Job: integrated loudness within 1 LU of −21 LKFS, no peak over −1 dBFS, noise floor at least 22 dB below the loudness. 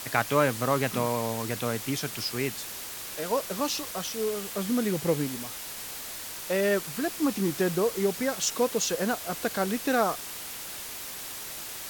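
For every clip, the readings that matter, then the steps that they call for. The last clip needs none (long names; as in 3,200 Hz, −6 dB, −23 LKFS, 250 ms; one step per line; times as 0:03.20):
background noise floor −39 dBFS; target noise floor −51 dBFS; integrated loudness −29.0 LKFS; sample peak −7.5 dBFS; target loudness −21.0 LKFS
→ noise reduction from a noise print 12 dB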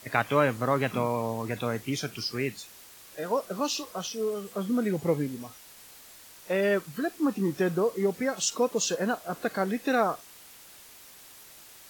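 background noise floor −51 dBFS; integrated loudness −29.0 LKFS; sample peak −8.0 dBFS; target loudness −21.0 LKFS
→ level +8 dB
brickwall limiter −1 dBFS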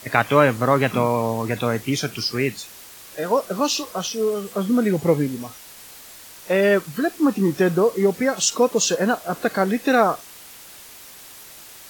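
integrated loudness −21.0 LKFS; sample peak −1.0 dBFS; background noise floor −43 dBFS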